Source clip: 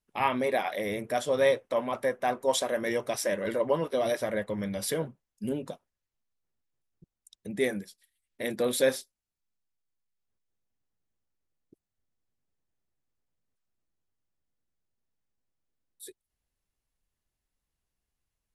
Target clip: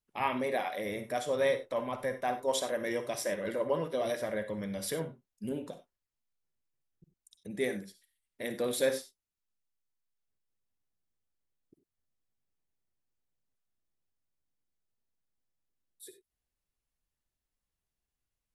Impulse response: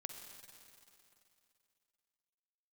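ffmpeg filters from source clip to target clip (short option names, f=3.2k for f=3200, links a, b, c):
-filter_complex "[0:a]asettb=1/sr,asplit=3[a][b][c];[a]atrim=end=1.464[d];[b]atrim=start=1.46:end=2.14,asetpts=PTS-STARTPTS,afade=t=in:d=0.004:c=qsin,afade=t=out:st=0.676:d=0.004:c=qsin,asubboost=boost=10:cutoff=180[e];[c]atrim=start=2.136[f];[d][e]acrossfade=d=0.004:c1=hsin:c2=qsin[g];[g][f]acrossfade=d=0.004:c1=qsin:c2=hsin[h];[1:a]atrim=start_sample=2205,atrim=end_sample=4410[i];[h][i]afir=irnorm=-1:irlink=0"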